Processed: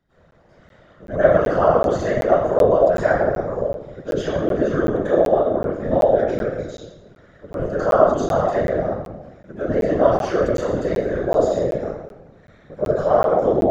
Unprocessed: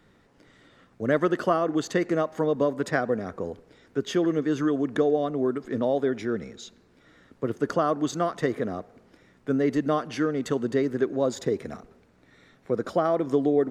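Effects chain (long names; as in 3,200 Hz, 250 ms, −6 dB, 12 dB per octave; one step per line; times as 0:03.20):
0:03.31–0:04.07: double-tracking delay 14 ms −5 dB
0:10.02–0:11.24: high-shelf EQ 5,400 Hz +7 dB
convolution reverb RT60 1.1 s, pre-delay 90 ms, DRR −20.5 dB
random phases in short frames
graphic EQ with 15 bands 250 Hz −4 dB, 630 Hz +9 dB, 1,600 Hz +4 dB
regular buffer underruns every 0.38 s, samples 512, zero, from 0:00.31
level −17 dB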